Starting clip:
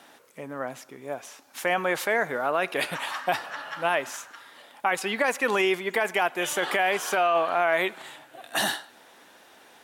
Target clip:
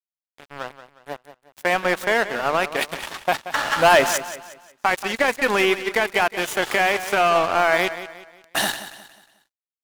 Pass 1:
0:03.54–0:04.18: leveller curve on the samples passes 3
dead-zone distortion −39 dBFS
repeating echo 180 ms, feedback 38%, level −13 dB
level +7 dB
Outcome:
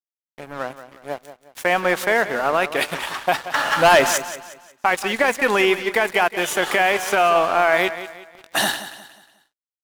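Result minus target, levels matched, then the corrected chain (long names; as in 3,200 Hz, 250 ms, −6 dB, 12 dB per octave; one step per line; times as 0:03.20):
dead-zone distortion: distortion −6 dB
0:03.54–0:04.18: leveller curve on the samples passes 3
dead-zone distortion −31.5 dBFS
repeating echo 180 ms, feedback 38%, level −13 dB
level +7 dB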